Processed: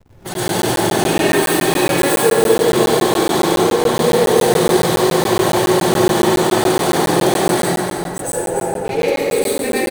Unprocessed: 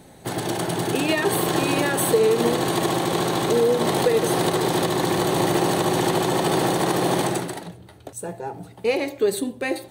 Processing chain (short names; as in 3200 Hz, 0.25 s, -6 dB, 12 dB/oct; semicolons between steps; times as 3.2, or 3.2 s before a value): self-modulated delay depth 0.058 ms; high shelf 4900 Hz +11 dB; notches 50/100/150/200/250/300/350 Hz; in parallel at -2.5 dB: negative-ratio compressor -27 dBFS, ratio -0.5; on the sum: flange 1.7 Hz, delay 1.6 ms, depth 4.1 ms, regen -3%; backlash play -28 dBFS; on a send: echo 0.295 s -6.5 dB; on the sum: plate-style reverb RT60 2.3 s, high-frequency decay 0.45×, pre-delay 85 ms, DRR -9.5 dB; crackling interface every 0.14 s, samples 512, zero, from 0.34; gain -3.5 dB